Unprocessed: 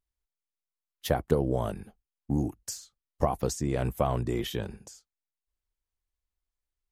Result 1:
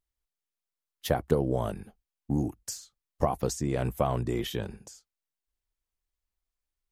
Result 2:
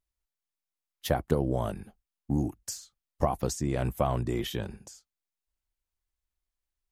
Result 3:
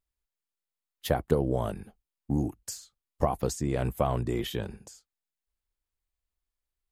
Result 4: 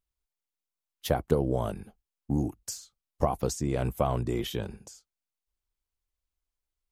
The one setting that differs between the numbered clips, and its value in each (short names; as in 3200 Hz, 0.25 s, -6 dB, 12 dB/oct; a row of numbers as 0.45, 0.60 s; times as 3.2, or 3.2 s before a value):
bell, frequency: 68, 450, 5800, 1800 Hz